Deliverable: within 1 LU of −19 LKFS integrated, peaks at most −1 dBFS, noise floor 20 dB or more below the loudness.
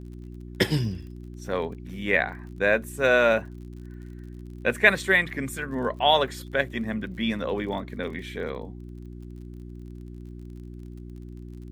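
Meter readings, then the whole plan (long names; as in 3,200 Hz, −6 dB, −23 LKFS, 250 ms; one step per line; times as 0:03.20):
crackle rate 43 per second; mains hum 60 Hz; hum harmonics up to 360 Hz; level of the hum −37 dBFS; integrated loudness −25.0 LKFS; sample peak −2.0 dBFS; target loudness −19.0 LKFS
→ click removal
hum removal 60 Hz, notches 6
level +6 dB
brickwall limiter −1 dBFS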